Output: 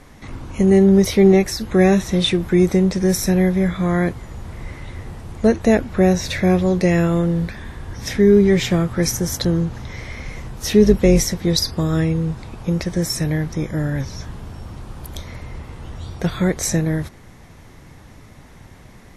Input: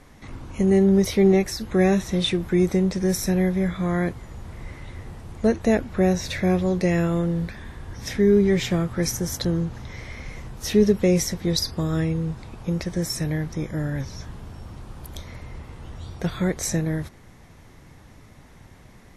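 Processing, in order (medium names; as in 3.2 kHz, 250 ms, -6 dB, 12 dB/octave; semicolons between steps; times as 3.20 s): 10.83–11.33 s: octave divider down 2 oct, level -4 dB; trim +5 dB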